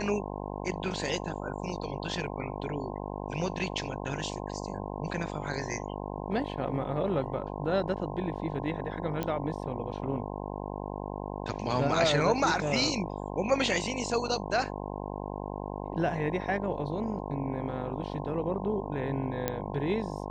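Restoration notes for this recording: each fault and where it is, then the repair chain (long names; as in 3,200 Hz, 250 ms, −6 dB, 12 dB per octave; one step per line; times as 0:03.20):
mains buzz 50 Hz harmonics 21 −37 dBFS
0:09.23: click −17 dBFS
0:19.48: click −13 dBFS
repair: click removal
hum removal 50 Hz, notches 21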